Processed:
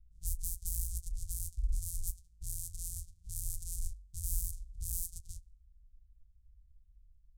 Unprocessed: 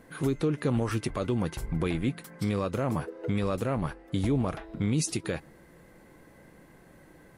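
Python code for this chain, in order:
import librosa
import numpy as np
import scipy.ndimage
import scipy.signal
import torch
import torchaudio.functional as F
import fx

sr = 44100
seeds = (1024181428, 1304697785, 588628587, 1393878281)

y = np.r_[np.sort(x[:len(x) // 256 * 256].reshape(-1, 256), axis=1).ravel(), x[len(x) // 256 * 256:]]
y = fx.env_lowpass(y, sr, base_hz=830.0, full_db=-23.0)
y = scipy.signal.sosfilt(scipy.signal.cheby2(4, 80, [290.0, 1800.0], 'bandstop', fs=sr, output='sos'), y)
y = y * librosa.db_to_amplitude(7.0)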